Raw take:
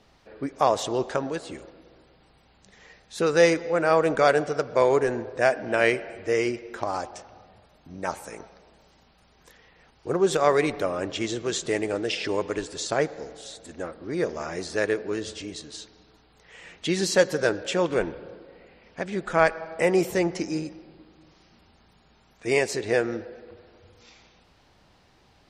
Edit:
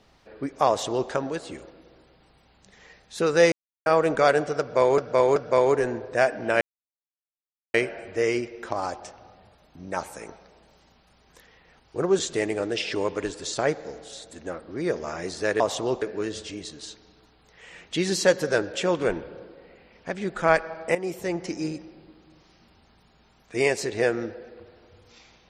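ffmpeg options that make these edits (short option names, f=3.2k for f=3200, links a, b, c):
-filter_complex "[0:a]asplit=10[a][b][c][d][e][f][g][h][i][j];[a]atrim=end=3.52,asetpts=PTS-STARTPTS,afade=t=out:st=3.516:d=0.004:c=hsin[k];[b]atrim=start=3.52:end=3.86,asetpts=PTS-STARTPTS,volume=0[l];[c]atrim=start=3.86:end=4.982,asetpts=PTS-STARTPTS,afade=t=in:d=0.004:c=hsin[m];[d]atrim=start=4.598:end=4.982[n];[e]atrim=start=4.598:end=5.85,asetpts=PTS-STARTPTS,afade=t=out:st=1.248:d=0.004:c=hsin,apad=pad_dur=1.13[o];[f]atrim=start=5.85:end=10.302,asetpts=PTS-STARTPTS,afade=t=in:d=0.004:c=hsin[p];[g]atrim=start=11.518:end=14.932[q];[h]atrim=start=0.678:end=1.102[r];[i]atrim=start=14.928:end=19.86,asetpts=PTS-STARTPTS,afade=t=out:st=4.928:d=0.004:c=hsin:silence=0.237137[s];[j]atrim=start=19.86,asetpts=PTS-STARTPTS,afade=t=in:d=0.77:silence=0.237137[t];[k][l][m]concat=n=3:v=0:a=1[u];[u][n]acrossfade=d=0.004:c1=hsin:c2=hsin[v];[o][p]concat=n=2:v=0:a=1[w];[v][w]acrossfade=d=0.004:c1=hsin:c2=hsin[x];[x][q]acrossfade=d=0.004:c1=hsin:c2=hsin[y];[y][r]acrossfade=d=0.004:c1=hsin:c2=hsin[z];[s][t]concat=n=2:v=0:a=1[aa];[z][aa]acrossfade=d=0.004:c1=hsin:c2=hsin"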